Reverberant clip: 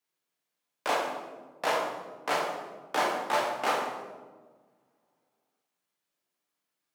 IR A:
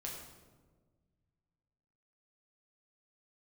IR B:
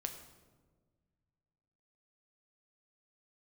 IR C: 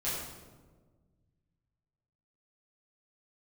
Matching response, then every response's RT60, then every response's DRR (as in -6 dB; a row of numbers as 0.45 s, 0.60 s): A; 1.5 s, 1.5 s, 1.4 s; -2.5 dB, 5.5 dB, -10.5 dB